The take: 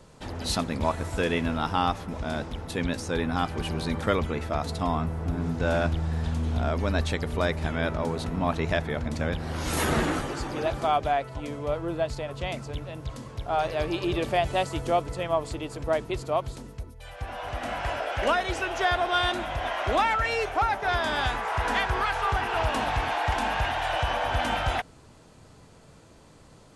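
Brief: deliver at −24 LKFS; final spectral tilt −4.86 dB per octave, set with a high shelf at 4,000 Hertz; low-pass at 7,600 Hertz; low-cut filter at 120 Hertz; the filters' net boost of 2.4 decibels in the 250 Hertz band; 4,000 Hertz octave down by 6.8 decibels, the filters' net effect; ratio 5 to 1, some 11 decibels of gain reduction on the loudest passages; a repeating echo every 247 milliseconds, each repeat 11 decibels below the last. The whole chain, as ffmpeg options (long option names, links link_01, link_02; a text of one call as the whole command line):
ffmpeg -i in.wav -af "highpass=120,lowpass=7600,equalizer=frequency=250:width_type=o:gain=3.5,highshelf=frequency=4000:gain=-7,equalizer=frequency=4000:width_type=o:gain=-5,acompressor=threshold=-32dB:ratio=5,aecho=1:1:247|494|741:0.282|0.0789|0.0221,volume=11.5dB" out.wav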